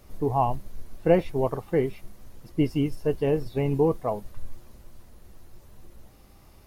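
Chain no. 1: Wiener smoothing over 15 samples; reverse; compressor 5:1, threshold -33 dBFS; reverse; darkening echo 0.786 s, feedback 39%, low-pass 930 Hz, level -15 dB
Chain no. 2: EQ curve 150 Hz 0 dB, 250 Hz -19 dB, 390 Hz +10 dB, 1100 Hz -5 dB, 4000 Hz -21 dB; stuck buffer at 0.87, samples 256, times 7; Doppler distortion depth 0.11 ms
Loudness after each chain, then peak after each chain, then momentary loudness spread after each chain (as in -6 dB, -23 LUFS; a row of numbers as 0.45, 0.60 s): -38.5, -21.5 LUFS; -22.0, -3.5 dBFS; 18, 10 LU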